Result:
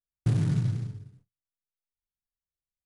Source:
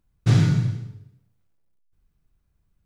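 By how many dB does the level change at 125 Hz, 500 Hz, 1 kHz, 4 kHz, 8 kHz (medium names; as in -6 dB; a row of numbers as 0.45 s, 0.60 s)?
-6.5 dB, -8.0 dB, under -10 dB, under -10 dB, no reading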